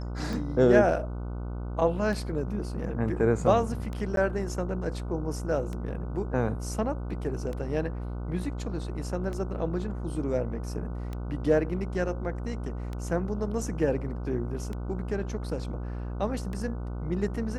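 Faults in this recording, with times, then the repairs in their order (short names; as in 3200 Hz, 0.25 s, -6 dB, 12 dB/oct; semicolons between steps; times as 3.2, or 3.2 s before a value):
buzz 60 Hz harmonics 25 -34 dBFS
tick 33 1/3 rpm
4.16–4.17 gap 12 ms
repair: de-click; de-hum 60 Hz, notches 25; interpolate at 4.16, 12 ms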